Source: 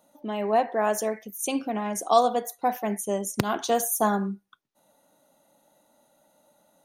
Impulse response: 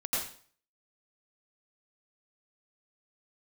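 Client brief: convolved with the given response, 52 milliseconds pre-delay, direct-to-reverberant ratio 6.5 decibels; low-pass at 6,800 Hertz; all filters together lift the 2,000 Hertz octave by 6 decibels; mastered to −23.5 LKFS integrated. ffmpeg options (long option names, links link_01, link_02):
-filter_complex "[0:a]lowpass=6800,equalizer=frequency=2000:width_type=o:gain=8,asplit=2[link_01][link_02];[1:a]atrim=start_sample=2205,adelay=52[link_03];[link_02][link_03]afir=irnorm=-1:irlink=0,volume=-12.5dB[link_04];[link_01][link_04]amix=inputs=2:normalize=0,volume=1dB"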